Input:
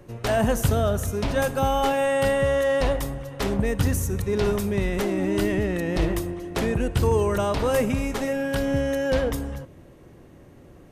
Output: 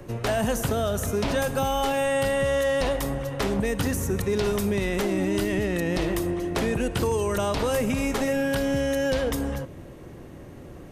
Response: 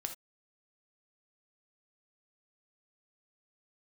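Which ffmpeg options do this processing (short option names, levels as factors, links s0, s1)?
-filter_complex "[0:a]acrossover=split=170|2700[s0][s1][s2];[s0]acompressor=threshold=0.0141:ratio=4[s3];[s1]acompressor=threshold=0.0355:ratio=4[s4];[s2]acompressor=threshold=0.0112:ratio=4[s5];[s3][s4][s5]amix=inputs=3:normalize=0,asplit=2[s6][s7];[s7]alimiter=limit=0.0708:level=0:latency=1,volume=1[s8];[s6][s8]amix=inputs=2:normalize=0"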